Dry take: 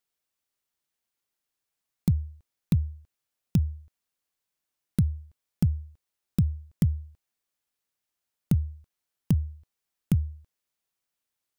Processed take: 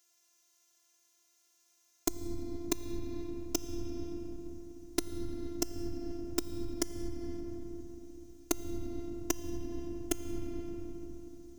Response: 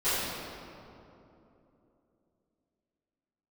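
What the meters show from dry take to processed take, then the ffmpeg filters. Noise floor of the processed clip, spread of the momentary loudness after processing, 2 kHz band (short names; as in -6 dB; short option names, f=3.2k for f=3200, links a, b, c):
-71 dBFS, 10 LU, n/a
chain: -filter_complex "[0:a]highpass=150,equalizer=f=6.2k:w=2.8:g=14,asplit=2[a][b];[1:a]atrim=start_sample=2205[c];[b][c]afir=irnorm=-1:irlink=0,volume=-14dB[d];[a][d]amix=inputs=2:normalize=0,acompressor=threshold=-34dB:ratio=20,afftfilt=real='hypot(re,im)*cos(PI*b)':imag='0':win_size=512:overlap=0.75,volume=12.5dB"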